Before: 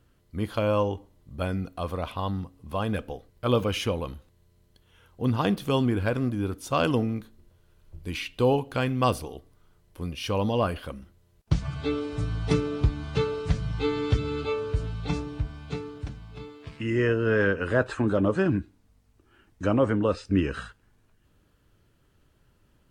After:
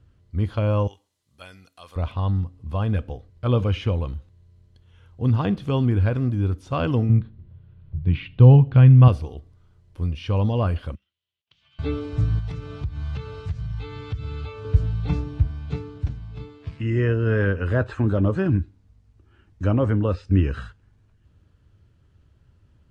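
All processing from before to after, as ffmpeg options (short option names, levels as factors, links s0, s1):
-filter_complex "[0:a]asettb=1/sr,asplit=3[s0][s1][s2];[s0]atrim=end=0.874[s3];[s1]atrim=start=0.87:end=1.96,asetpts=PTS-STARTPTS,afade=t=in:d=0.004:c=qsin,afade=t=out:st=1.086:d=0.004:c=qsin,acontrast=84,aderivative[s4];[s2]atrim=start=1.956[s5];[s3][s4]acrossfade=d=0.004:c1=hsin:c2=qsin[s6];[s6][s5]acrossfade=d=0.004:c1=qsin:c2=hsin,asettb=1/sr,asplit=3[s7][s8][s9];[s7]atrim=end=7.094[s10];[s8]atrim=start=7.09:end=9.08,asetpts=PTS-STARTPTS,afade=t=in:d=0.004:c=qsin,afade=t=out:st=1.986:d=0.004:c=qsin,lowpass=f=3600:w=0.5412,lowpass=f=3600:w=1.3066,equalizer=f=140:t=o:w=0.93:g=14.5[s11];[s9]atrim=start=9.076[s12];[s10][s11]acrossfade=d=0.004:c1=hsin:c2=qsin[s13];[s13][s12]acrossfade=d=0.004:c1=qsin:c2=hsin,asettb=1/sr,asplit=3[s14][s15][s16];[s14]atrim=end=10.954[s17];[s15]atrim=start=10.95:end=11.79,asetpts=PTS-STARTPTS,afade=t=in:d=0.004:c=qsin,afade=t=out:st=0.836:d=0.004:c=qsin,acompressor=threshold=0.0224:ratio=6:attack=3.2:release=140:knee=1:detection=peak,bandpass=f=3100:t=q:w=4.5[s18];[s16]atrim=start=11.786[s19];[s17][s18]acrossfade=d=0.004:c1=hsin:c2=qsin[s20];[s20][s19]acrossfade=d=0.004:c1=qsin:c2=hsin,asettb=1/sr,asplit=3[s21][s22][s23];[s21]atrim=end=12.394[s24];[s22]atrim=start=12.39:end=14.65,asetpts=PTS-STARTPTS,afade=t=in:d=0.004:c=qsin,afade=t=out:st=2.256:d=0.004:c=qsin,equalizer=f=310:t=o:w=1.4:g=-10.5,acompressor=threshold=0.0224:ratio=6:attack=3.2:release=140:knee=1:detection=peak[s25];[s23]atrim=start=14.646[s26];[s24][s25]acrossfade=d=0.004:c1=hsin:c2=qsin[s27];[s27][s26]acrossfade=d=0.004:c1=qsin:c2=hsin,lowpass=7000,acrossover=split=3800[s28][s29];[s29]acompressor=threshold=0.00251:ratio=4:attack=1:release=60[s30];[s28][s30]amix=inputs=2:normalize=0,equalizer=f=83:w=0.78:g=14,volume=0.794"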